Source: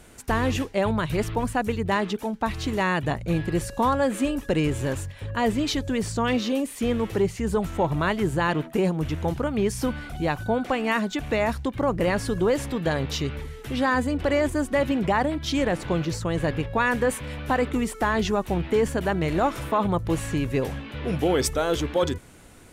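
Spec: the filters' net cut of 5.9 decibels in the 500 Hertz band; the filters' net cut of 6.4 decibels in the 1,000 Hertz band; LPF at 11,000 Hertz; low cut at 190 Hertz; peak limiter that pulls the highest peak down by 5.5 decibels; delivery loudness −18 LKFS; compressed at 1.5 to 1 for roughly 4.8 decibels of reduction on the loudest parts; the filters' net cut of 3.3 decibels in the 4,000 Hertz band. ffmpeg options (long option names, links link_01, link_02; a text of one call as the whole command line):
ffmpeg -i in.wav -af "highpass=190,lowpass=11000,equalizer=frequency=500:width_type=o:gain=-5.5,equalizer=frequency=1000:width_type=o:gain=-6,equalizer=frequency=4000:width_type=o:gain=-4,acompressor=threshold=-36dB:ratio=1.5,volume=17.5dB,alimiter=limit=-7.5dB:level=0:latency=1" out.wav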